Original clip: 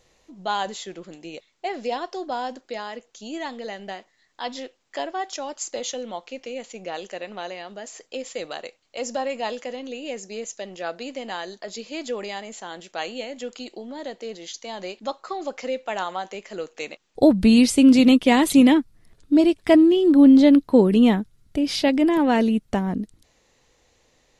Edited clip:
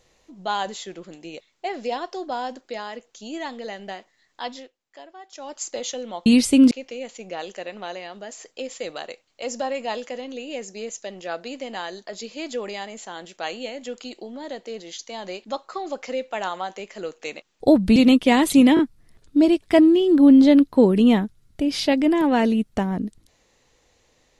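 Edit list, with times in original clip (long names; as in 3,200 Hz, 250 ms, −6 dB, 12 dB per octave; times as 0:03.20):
0:04.43–0:05.59: duck −14.5 dB, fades 0.29 s
0:17.51–0:17.96: move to 0:06.26
0:18.75: stutter 0.02 s, 3 plays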